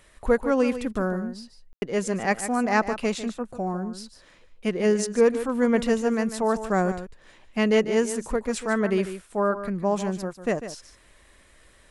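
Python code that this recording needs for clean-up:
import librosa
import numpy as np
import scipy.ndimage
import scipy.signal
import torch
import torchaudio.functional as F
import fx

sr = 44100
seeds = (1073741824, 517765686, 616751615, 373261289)

y = fx.fix_ambience(x, sr, seeds[0], print_start_s=10.97, print_end_s=11.47, start_s=1.73, end_s=1.82)
y = fx.fix_echo_inverse(y, sr, delay_ms=148, level_db=-11.5)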